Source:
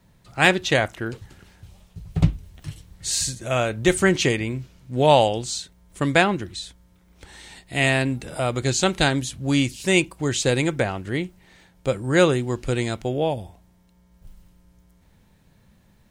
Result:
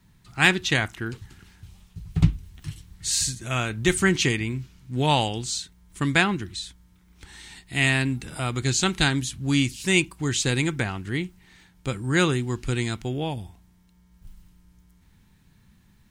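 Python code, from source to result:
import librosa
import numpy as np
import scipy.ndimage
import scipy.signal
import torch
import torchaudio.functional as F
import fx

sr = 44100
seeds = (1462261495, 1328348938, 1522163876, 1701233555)

y = fx.peak_eq(x, sr, hz=570.0, db=-14.0, octaves=0.78)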